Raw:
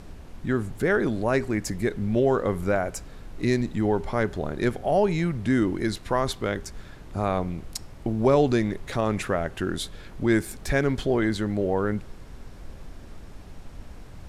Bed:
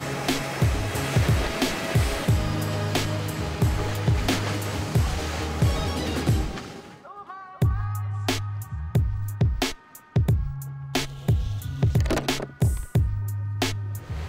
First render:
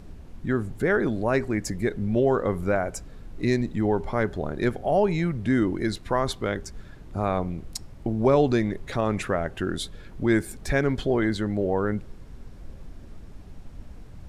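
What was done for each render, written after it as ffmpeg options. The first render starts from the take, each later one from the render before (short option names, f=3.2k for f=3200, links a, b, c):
-af "afftdn=nr=6:nf=-44"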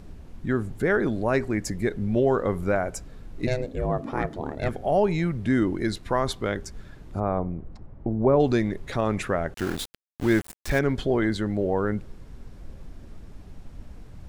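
-filter_complex "[0:a]asplit=3[a][b][c];[a]afade=t=out:st=3.46:d=0.02[d];[b]aeval=exprs='val(0)*sin(2*PI*260*n/s)':c=same,afade=t=in:st=3.46:d=0.02,afade=t=out:st=4.68:d=0.02[e];[c]afade=t=in:st=4.68:d=0.02[f];[d][e][f]amix=inputs=3:normalize=0,asplit=3[g][h][i];[g]afade=t=out:st=7.19:d=0.02[j];[h]lowpass=1.2k,afade=t=in:st=7.19:d=0.02,afade=t=out:st=8.39:d=0.02[k];[i]afade=t=in:st=8.39:d=0.02[l];[j][k][l]amix=inputs=3:normalize=0,asettb=1/sr,asplit=3[m][n][o];[m]atrim=end=9.544[p];[n]atrim=start=9.54:end=10.79,asetpts=PTS-STARTPTS,afade=t=in:d=0.004:c=qsin,afade=t=out:st=1.246:d=0.004:c=qsin,aeval=exprs='val(0)*gte(abs(val(0)),0.0282)':c=same[q];[o]atrim=start=10.786[r];[p][q]acrossfade=d=0.004:c1=hsin:c2=qsin[s];[s][r]acrossfade=d=0.004:c1=qsin:c2=hsin"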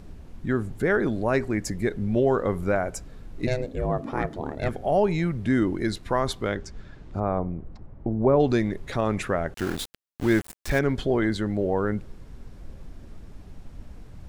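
-filter_complex "[0:a]asettb=1/sr,asplit=3[a][b][c];[a]atrim=end=6.554[d];[b]atrim=start=6.55:end=8.5,asetpts=PTS-STARTPTS,afade=t=in:d=0.004:c=qsin,afade=t=out:st=1.946:d=0.004:c=qsin,lowpass=6.1k[e];[c]atrim=start=8.496[f];[d][e]acrossfade=d=0.004:c1=hsin:c2=qsin[g];[g][f]acrossfade=d=0.004:c1=qsin:c2=hsin"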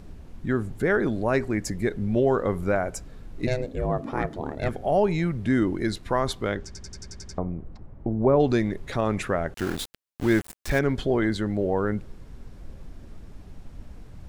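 -filter_complex "[0:a]asplit=9[a][b][c][d][e][f][g][h][i];[a]atrim=end=6.752[j];[b]atrim=start=6.658:end=6.752[k];[c]atrim=start=6.658:end=6.752[l];[d]atrim=start=6.658:end=6.752[m];[e]atrim=start=6.658:end=6.752[n];[f]atrim=start=6.658:end=6.752[o];[g]atrim=start=6.658:end=6.752[p];[h]atrim=start=6.658:end=6.752[q];[i]atrim=start=7.378[r];[j][k]acrossfade=d=0.004:c1=hsin:c2=hsin[s];[s][l]acrossfade=d=0.004:c1=hsin:c2=hsin[t];[t][m]acrossfade=d=0.004:c1=hsin:c2=hsin[u];[u][n]acrossfade=d=0.004:c1=hsin:c2=hsin[v];[v][o]acrossfade=d=0.004:c1=hsin:c2=hsin[w];[w][p]acrossfade=d=0.004:c1=hsin:c2=hsin[x];[x][q]acrossfade=d=0.004:c1=hsin:c2=hsin[y];[y][r]acrossfade=d=0.004:c1=hsin:c2=hsin"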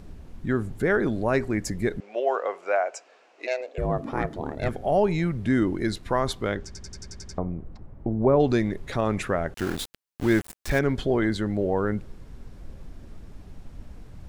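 -filter_complex "[0:a]asettb=1/sr,asplit=3[a][b][c];[a]atrim=end=2.004[d];[b]atrim=start=2:end=3.78,asetpts=PTS-STARTPTS,afade=t=in:d=0.004:c=qsin,afade=t=out:st=1.776:d=0.004:c=qsin,highpass=f=490:w=0.5412,highpass=f=490:w=1.3066,equalizer=f=700:t=q:w=4:g=5,equalizer=f=2.6k:t=q:w=4:g=7,equalizer=f=3.7k:t=q:w=4:g=-4,lowpass=f=7k:w=0.5412,lowpass=f=7k:w=1.3066[e];[c]atrim=start=3.776[f];[d][e]acrossfade=d=0.004:c1=hsin:c2=qsin[g];[g][f]acrossfade=d=0.004:c1=qsin:c2=hsin"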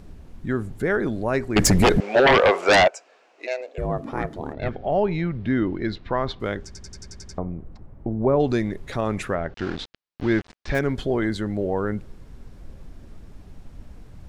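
-filter_complex "[0:a]asettb=1/sr,asplit=3[a][b][c];[a]atrim=end=1.564[d];[b]atrim=start=1.56:end=2.88,asetpts=PTS-STARTPTS,afade=t=in:d=0.004:c=qsin,afade=t=out:st=1.316:d=0.004:c=qsin,aeval=exprs='0.282*sin(PI/2*4.47*val(0)/0.282)':c=same[e];[c]atrim=start=2.876[f];[d][e]acrossfade=d=0.004:c1=hsin:c2=qsin[g];[g][f]acrossfade=d=0.004:c1=qsin:c2=hsin,asettb=1/sr,asplit=3[h][i][j];[h]atrim=end=4.534[k];[i]atrim=start=4.53:end=6.4,asetpts=PTS-STARTPTS,afade=t=in:d=0.004:c=qsin,afade=t=out:st=1.866:d=0.004:c=qsin,lowpass=f=4.3k:w=0.5412,lowpass=f=4.3k:w=1.3066[l];[j]atrim=start=6.396[m];[k][l]acrossfade=d=0.004:c1=hsin:c2=qsin[n];[n][m]acrossfade=d=0.004:c1=qsin:c2=hsin,asettb=1/sr,asplit=3[o][p][q];[o]atrim=end=9.354[r];[p]atrim=start=9.35:end=10.75,asetpts=PTS-STARTPTS,afade=t=in:d=0.004:c=qsin,afade=t=out:st=1.396:d=0.004:c=qsin,lowpass=f=5.1k:w=0.5412,lowpass=f=5.1k:w=1.3066[s];[q]atrim=start=10.746[t];[r][s]acrossfade=d=0.004:c1=hsin:c2=qsin[u];[u][t]acrossfade=d=0.004:c1=qsin:c2=hsin"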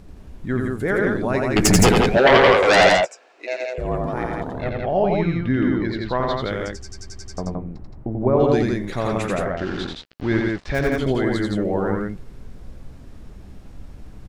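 -filter_complex "[0:a]asplit=2[a][b];[b]adelay=16,volume=-13.5dB[c];[a][c]amix=inputs=2:normalize=0,aecho=1:1:87.46|169.1:0.708|0.708"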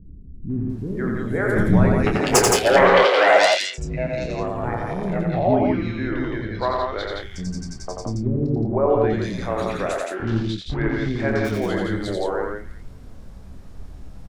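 -filter_complex "[0:a]asplit=2[a][b];[b]adelay=27,volume=-8dB[c];[a][c]amix=inputs=2:normalize=0,acrossover=split=320|2400[d][e][f];[e]adelay=500[g];[f]adelay=700[h];[d][g][h]amix=inputs=3:normalize=0"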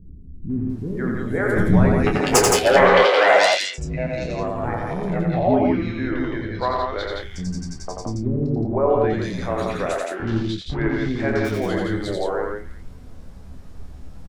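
-filter_complex "[0:a]asplit=2[a][b];[b]adelay=12,volume=-10.5dB[c];[a][c]amix=inputs=2:normalize=0"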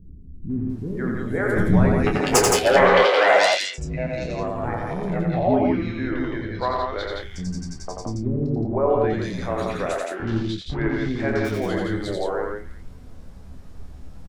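-af "volume=-1.5dB"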